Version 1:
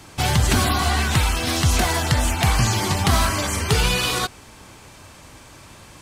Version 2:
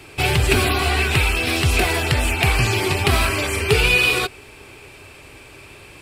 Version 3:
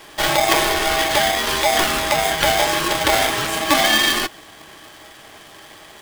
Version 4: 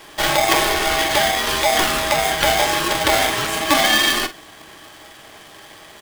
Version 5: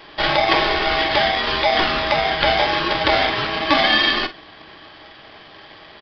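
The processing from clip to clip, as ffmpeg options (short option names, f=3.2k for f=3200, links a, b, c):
-af "equalizer=f=200:t=o:w=0.33:g=-9,equalizer=f=400:t=o:w=0.33:g=11,equalizer=f=1k:t=o:w=0.33:g=-4,equalizer=f=2.5k:t=o:w=0.33:g=12,equalizer=f=6.3k:t=o:w=0.33:g=-9"
-af "aeval=exprs='val(0)*sgn(sin(2*PI*720*n/s))':c=same"
-filter_complex "[0:a]asplit=2[a][b];[b]adelay=47,volume=-12.5dB[c];[a][c]amix=inputs=2:normalize=0"
-af "aresample=11025,aresample=44100"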